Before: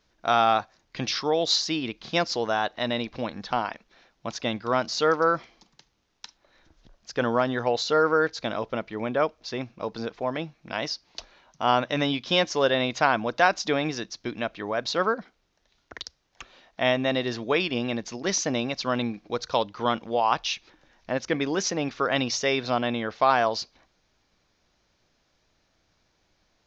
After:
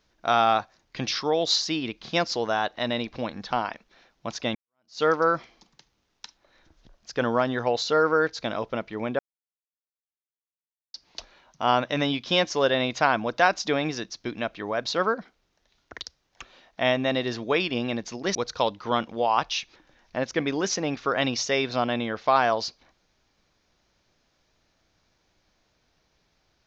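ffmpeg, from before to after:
ffmpeg -i in.wav -filter_complex "[0:a]asplit=5[link_01][link_02][link_03][link_04][link_05];[link_01]atrim=end=4.55,asetpts=PTS-STARTPTS,afade=type=out:start_time=4.546:duration=0.004:curve=hsin[link_06];[link_02]atrim=start=4.55:end=9.19,asetpts=PTS-STARTPTS,afade=type=in:duration=0.47:curve=exp,afade=type=out:start_time=4.636:duration=0.004:curve=hsin[link_07];[link_03]atrim=start=9.19:end=10.94,asetpts=PTS-STARTPTS,volume=0[link_08];[link_04]atrim=start=10.94:end=18.352,asetpts=PTS-STARTPTS,afade=type=in:duration=0.004:curve=hsin[link_09];[link_05]atrim=start=19.288[link_10];[link_06][link_07][link_08][link_09]concat=n=4:v=0:a=1[link_11];[link_11][link_10]acrossfade=duration=0.004:curve1=hsin:curve2=hsin" out.wav

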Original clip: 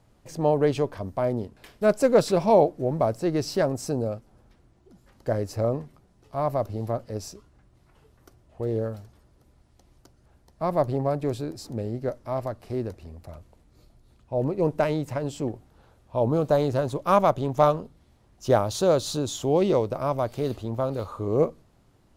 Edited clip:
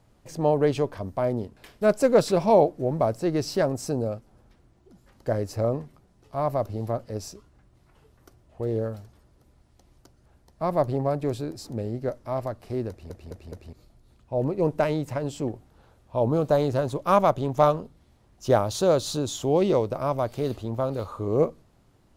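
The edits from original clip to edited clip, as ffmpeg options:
ffmpeg -i in.wav -filter_complex "[0:a]asplit=5[link_01][link_02][link_03][link_04][link_05];[link_01]atrim=end=13.102[link_06];[link_02]atrim=start=12.888:end=13.102[link_07];[link_03]atrim=start=12.888:end=13.102[link_08];[link_04]atrim=start=12.888:end=13.102[link_09];[link_05]atrim=start=13.728[link_10];[link_06][link_07]acrossfade=duration=0.004:curve1=hsin:curve2=hsin[link_11];[link_11][link_08]acrossfade=duration=0.004:curve1=hsin:curve2=hsin[link_12];[link_12][link_09]acrossfade=duration=0.004:curve1=hsin:curve2=hsin[link_13];[link_13][link_10]acrossfade=duration=0.004:curve1=hsin:curve2=hsin" out.wav

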